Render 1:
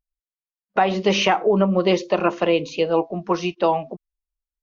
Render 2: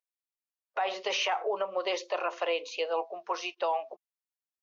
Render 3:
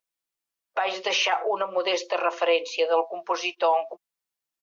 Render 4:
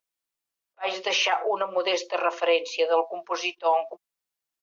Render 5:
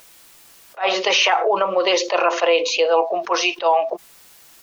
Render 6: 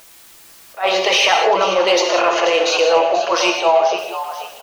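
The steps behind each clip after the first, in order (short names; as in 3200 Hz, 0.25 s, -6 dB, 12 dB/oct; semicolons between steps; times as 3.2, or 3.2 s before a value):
HPF 540 Hz 24 dB/oct; limiter -15.5 dBFS, peak gain reduction 8 dB; gain -5 dB
comb 6 ms, depth 38%; gain +6 dB
attack slew limiter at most 540 dB/s
fast leveller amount 50%; gain +4.5 dB
frequency-shifting echo 0.485 s, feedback 37%, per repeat +75 Hz, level -11.5 dB; in parallel at -6 dB: soft clip -16 dBFS, distortion -11 dB; on the sum: reverb, pre-delay 3 ms, DRR 3.5 dB; gain -1 dB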